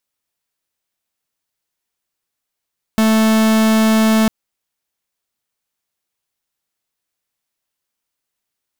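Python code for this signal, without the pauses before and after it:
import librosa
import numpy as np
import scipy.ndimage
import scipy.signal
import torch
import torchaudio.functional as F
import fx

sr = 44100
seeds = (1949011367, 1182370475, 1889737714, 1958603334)

y = fx.pulse(sr, length_s=1.3, hz=220.0, level_db=-12.5, duty_pct=45)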